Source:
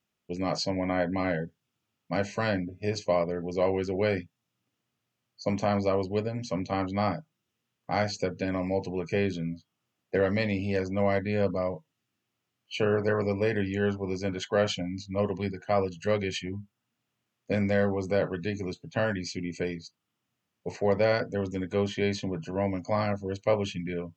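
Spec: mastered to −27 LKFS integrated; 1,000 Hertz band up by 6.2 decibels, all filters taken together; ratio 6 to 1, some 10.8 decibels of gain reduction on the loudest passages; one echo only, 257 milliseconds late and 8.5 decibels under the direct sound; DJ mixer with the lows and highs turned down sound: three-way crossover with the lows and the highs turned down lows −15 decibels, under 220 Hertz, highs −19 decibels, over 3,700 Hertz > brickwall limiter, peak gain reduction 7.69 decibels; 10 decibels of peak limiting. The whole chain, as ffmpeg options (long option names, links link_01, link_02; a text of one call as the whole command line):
ffmpeg -i in.wav -filter_complex "[0:a]equalizer=frequency=1000:width_type=o:gain=8.5,acompressor=threshold=-29dB:ratio=6,alimiter=level_in=1dB:limit=-24dB:level=0:latency=1,volume=-1dB,acrossover=split=220 3700:gain=0.178 1 0.112[link_01][link_02][link_03];[link_01][link_02][link_03]amix=inputs=3:normalize=0,aecho=1:1:257:0.376,volume=14dB,alimiter=limit=-17dB:level=0:latency=1" out.wav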